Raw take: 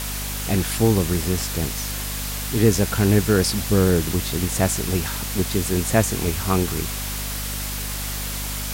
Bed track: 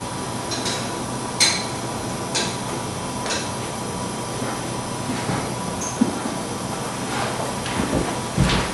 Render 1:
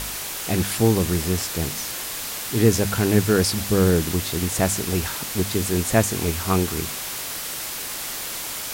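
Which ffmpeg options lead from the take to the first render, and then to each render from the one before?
-af "bandreject=f=50:t=h:w=4,bandreject=f=100:t=h:w=4,bandreject=f=150:t=h:w=4,bandreject=f=200:t=h:w=4,bandreject=f=250:t=h:w=4"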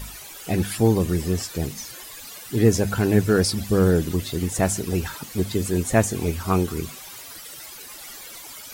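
-af "afftdn=nr=14:nf=-31"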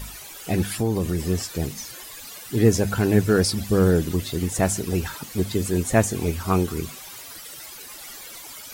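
-filter_complex "[0:a]asettb=1/sr,asplit=3[s0][s1][s2];[s0]atrim=end=0.754[s3];[s1]atrim=start=0.75:end=1.24,asetpts=PTS-STARTPTS,afade=t=in:d=0.004:c=qsin,afade=t=out:st=0.486:d=0.004:c=qsin,acompressor=threshold=0.1:ratio=2.5:attack=3.2:release=140:knee=1:detection=peak[s4];[s2]atrim=start=1.236[s5];[s3][s4]acrossfade=d=0.004:c1=hsin:c2=qsin[s6];[s6][s5]acrossfade=d=0.004:c1=qsin:c2=hsin"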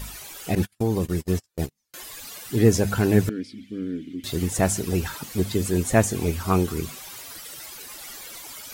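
-filter_complex "[0:a]asettb=1/sr,asplit=3[s0][s1][s2];[s0]atrim=end=0.554[s3];[s1]atrim=start=0.55:end=1.94,asetpts=PTS-STARTPTS,afade=t=in:d=0.004:c=qsin,afade=t=out:st=1.386:d=0.004:c=qsin,agate=range=0.00708:threshold=0.0501:ratio=16:release=100:detection=peak[s4];[s2]atrim=start=1.936[s5];[s3][s4]acrossfade=d=0.004:c1=hsin:c2=qsin[s6];[s6][s5]acrossfade=d=0.004:c1=qsin:c2=hsin,asettb=1/sr,asplit=3[s7][s8][s9];[s7]atrim=end=3.294[s10];[s8]atrim=start=3.29:end=4.24,asetpts=PTS-STARTPTS,afade=t=in:d=0.004:c=qsin,afade=t=out:st=0.946:d=0.004:c=qsin,asplit=3[s11][s12][s13];[s11]bandpass=f=270:t=q:w=8,volume=1[s14];[s12]bandpass=f=2290:t=q:w=8,volume=0.501[s15];[s13]bandpass=f=3010:t=q:w=8,volume=0.355[s16];[s14][s15][s16]amix=inputs=3:normalize=0[s17];[s9]atrim=start=4.236[s18];[s10][s17]acrossfade=d=0.004:c1=hsin:c2=qsin[s19];[s19][s18]acrossfade=d=0.004:c1=qsin:c2=hsin"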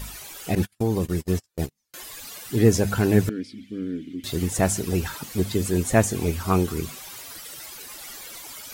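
-af anull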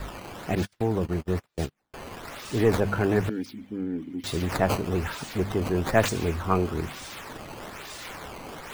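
-filter_complex "[0:a]acrossover=split=360|960|2700[s0][s1][s2][s3];[s0]asoftclip=type=tanh:threshold=0.0668[s4];[s3]acrusher=samples=14:mix=1:aa=0.000001:lfo=1:lforange=22.4:lforate=1.1[s5];[s4][s1][s2][s5]amix=inputs=4:normalize=0"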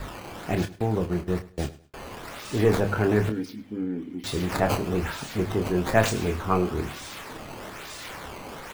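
-filter_complex "[0:a]asplit=2[s0][s1];[s1]adelay=28,volume=0.447[s2];[s0][s2]amix=inputs=2:normalize=0,aecho=1:1:104|208:0.119|0.0321"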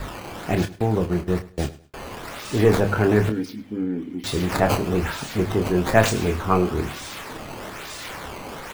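-af "volume=1.58"

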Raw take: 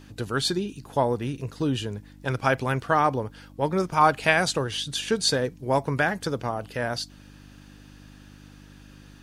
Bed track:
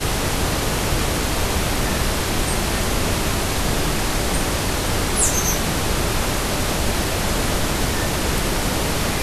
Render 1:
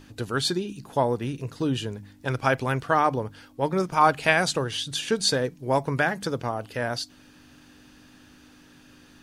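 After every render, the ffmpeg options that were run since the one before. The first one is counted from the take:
-af "bandreject=f=50:t=h:w=4,bandreject=f=100:t=h:w=4,bandreject=f=150:t=h:w=4,bandreject=f=200:t=h:w=4"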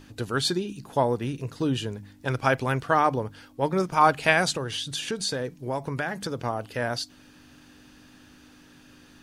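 -filter_complex "[0:a]asettb=1/sr,asplit=3[s0][s1][s2];[s0]atrim=end=4.564[s3];[s1]atrim=start=4.56:end=6.44,asetpts=PTS-STARTPTS,afade=t=in:d=0.004:c=qsin,afade=t=out:st=1.876:d=0.004:c=qsin,acompressor=threshold=0.0447:ratio=2.5:attack=3.2:release=140:knee=1:detection=peak[s4];[s2]atrim=start=6.436[s5];[s3][s4]acrossfade=d=0.004:c1=hsin:c2=qsin[s6];[s6][s5]acrossfade=d=0.004:c1=qsin:c2=hsin"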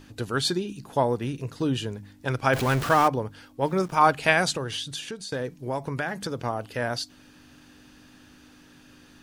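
-filter_complex "[0:a]asettb=1/sr,asplit=3[s0][s1][s2];[s0]atrim=end=2.534[s3];[s1]atrim=start=2.53:end=3.08,asetpts=PTS-STARTPTS,afade=t=in:d=0.004:c=qsin,afade=t=out:st=0.546:d=0.004:c=qsin,aeval=exprs='val(0)+0.5*0.0501*sgn(val(0))':c=same[s4];[s2]atrim=start=3.076[s5];[s3][s4]acrossfade=d=0.004:c1=hsin:c2=qsin[s6];[s6][s5]acrossfade=d=0.004:c1=qsin:c2=hsin,asettb=1/sr,asplit=3[s7][s8][s9];[s7]atrim=end=3.624[s10];[s8]atrim=start=3.62:end=4.11,asetpts=PTS-STARTPTS,afade=t=in:d=0.004:c=qsin,afade=t=out:st=0.486:d=0.004:c=qsin,aeval=exprs='val(0)*gte(abs(val(0)),0.00501)':c=same[s11];[s9]atrim=start=4.106[s12];[s10][s11]acrossfade=d=0.004:c1=hsin:c2=qsin[s13];[s13][s12]acrossfade=d=0.004:c1=qsin:c2=hsin,asplit=2[s14][s15];[s14]atrim=end=5.32,asetpts=PTS-STARTPTS,afade=t=out:st=4.73:d=0.59:silence=0.266073[s16];[s15]atrim=start=5.32,asetpts=PTS-STARTPTS,afade=t=in:d=0.004:c=hsin:silence=0.266073[s17];[s16][s17]concat=n=2:v=0:a=1"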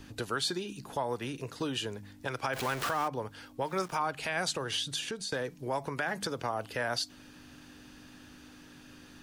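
-filter_complex "[0:a]acrossover=split=300|690[s0][s1][s2];[s0]acompressor=threshold=0.00708:ratio=4[s3];[s1]acompressor=threshold=0.0141:ratio=4[s4];[s2]acompressor=threshold=0.0447:ratio=4[s5];[s3][s4][s5]amix=inputs=3:normalize=0,alimiter=limit=0.0944:level=0:latency=1:release=110"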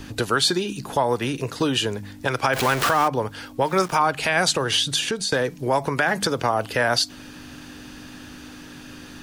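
-af "volume=3.98"

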